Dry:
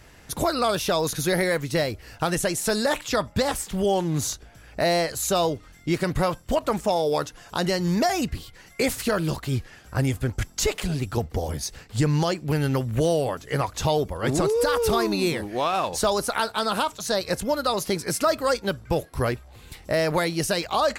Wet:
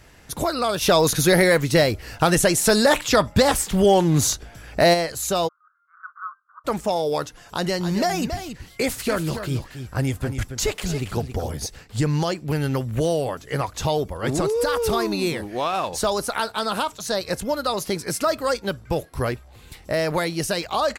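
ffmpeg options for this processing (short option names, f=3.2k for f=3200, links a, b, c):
-filter_complex "[0:a]asplit=3[a][b][c];[a]afade=t=out:st=0.81:d=0.02[d];[b]acontrast=80,afade=t=in:st=0.81:d=0.02,afade=t=out:st=4.93:d=0.02[e];[c]afade=t=in:st=4.93:d=0.02[f];[d][e][f]amix=inputs=3:normalize=0,asplit=3[g][h][i];[g]afade=t=out:st=5.47:d=0.02[j];[h]asuperpass=centerf=1300:order=8:qfactor=3.3,afade=t=in:st=5.47:d=0.02,afade=t=out:st=6.64:d=0.02[k];[i]afade=t=in:st=6.64:d=0.02[l];[j][k][l]amix=inputs=3:normalize=0,asplit=3[m][n][o];[m]afade=t=out:st=7.61:d=0.02[p];[n]aecho=1:1:276:0.355,afade=t=in:st=7.61:d=0.02,afade=t=out:st=11.65:d=0.02[q];[o]afade=t=in:st=11.65:d=0.02[r];[p][q][r]amix=inputs=3:normalize=0"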